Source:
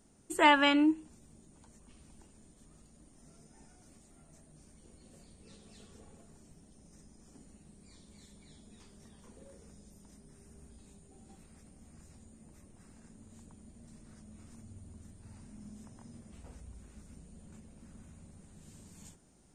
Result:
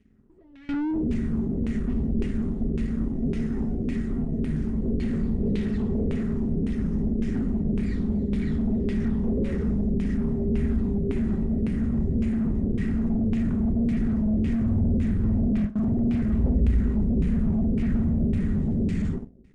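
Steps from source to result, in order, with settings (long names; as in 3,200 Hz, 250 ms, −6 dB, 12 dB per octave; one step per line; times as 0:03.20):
mu-law and A-law mismatch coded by mu
high-shelf EQ 2,900 Hz +10 dB
bit reduction 11 bits
notch filter 600 Hz, Q 12
hollow resonant body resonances 240/390/1,900 Hz, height 15 dB, ringing for 40 ms
fuzz pedal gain 42 dB, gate −50 dBFS
automatic gain control gain up to 10 dB
noise gate with hold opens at −4 dBFS
guitar amp tone stack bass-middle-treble 10-0-1
auto-filter low-pass saw down 1.8 Hz 450–2,500 Hz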